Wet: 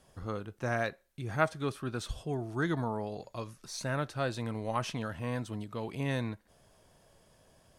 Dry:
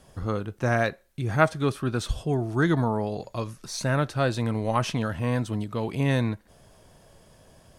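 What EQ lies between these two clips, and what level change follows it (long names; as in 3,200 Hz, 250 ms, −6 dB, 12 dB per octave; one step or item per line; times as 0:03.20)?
low-shelf EQ 330 Hz −3.5 dB
−7.0 dB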